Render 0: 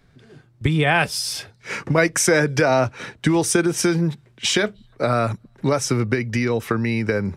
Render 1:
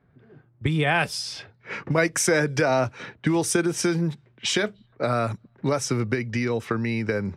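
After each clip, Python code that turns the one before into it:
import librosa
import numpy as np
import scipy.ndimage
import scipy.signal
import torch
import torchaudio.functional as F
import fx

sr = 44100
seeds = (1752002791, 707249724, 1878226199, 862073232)

y = scipy.signal.sosfilt(scipy.signal.butter(2, 66.0, 'highpass', fs=sr, output='sos'), x)
y = fx.env_lowpass(y, sr, base_hz=1500.0, full_db=-16.5)
y = F.gain(torch.from_numpy(y), -4.0).numpy()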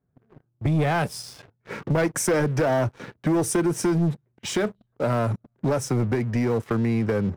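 y = fx.peak_eq(x, sr, hz=3500.0, db=-14.0, octaves=2.7)
y = fx.leveller(y, sr, passes=3)
y = F.gain(torch.from_numpy(y), -5.5).numpy()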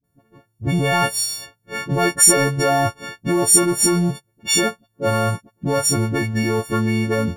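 y = fx.freq_snap(x, sr, grid_st=4)
y = fx.dispersion(y, sr, late='highs', ms=40.0, hz=460.0)
y = F.gain(torch.from_numpy(y), 3.0).numpy()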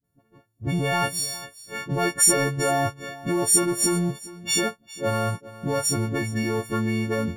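y = x + 10.0 ** (-18.0 / 20.0) * np.pad(x, (int(404 * sr / 1000.0), 0))[:len(x)]
y = F.gain(torch.from_numpy(y), -5.5).numpy()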